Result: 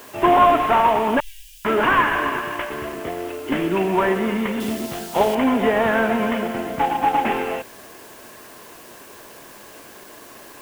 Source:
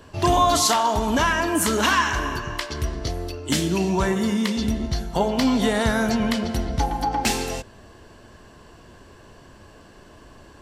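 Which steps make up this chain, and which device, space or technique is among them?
army field radio (BPF 310–2900 Hz; CVSD 16 kbps; white noise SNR 25 dB); 1.2–1.65 inverse Chebyshev band-stop 120–1400 Hz, stop band 60 dB; 4.6–5.35 resonant high shelf 3000 Hz +8 dB, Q 1.5; gain +6.5 dB

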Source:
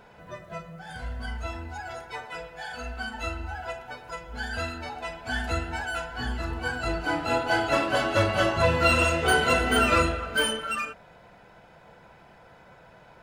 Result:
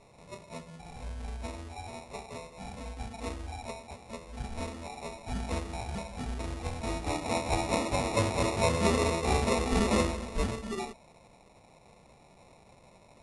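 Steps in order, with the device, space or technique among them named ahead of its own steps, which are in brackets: crushed at another speed (playback speed 2×; sample-and-hold 14×; playback speed 0.5×); gain -5 dB

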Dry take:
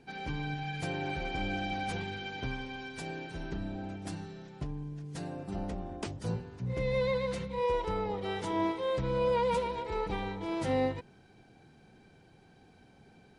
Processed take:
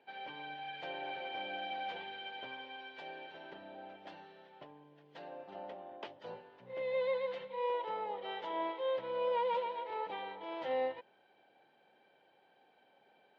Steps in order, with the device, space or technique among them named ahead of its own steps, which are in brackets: phone earpiece (speaker cabinet 440–3800 Hz, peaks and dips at 570 Hz +10 dB, 880 Hz +7 dB, 1800 Hz +4 dB, 3100 Hz +7 dB); gain -8 dB

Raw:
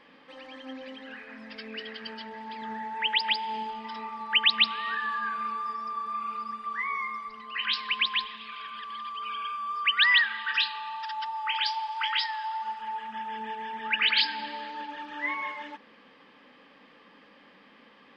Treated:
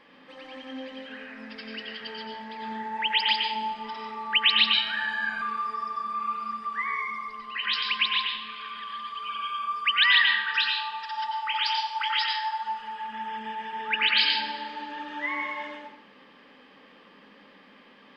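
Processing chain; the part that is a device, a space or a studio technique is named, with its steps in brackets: bathroom (reverb RT60 0.65 s, pre-delay 85 ms, DRR 2 dB); 4.73–5.42 comb 1.3 ms, depth 88%

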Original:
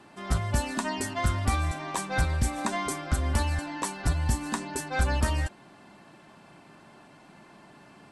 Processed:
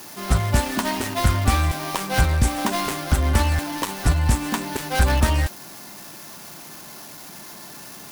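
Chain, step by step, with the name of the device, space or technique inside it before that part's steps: budget class-D amplifier (switching dead time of 0.18 ms; switching spikes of -31.5 dBFS); gain +7.5 dB

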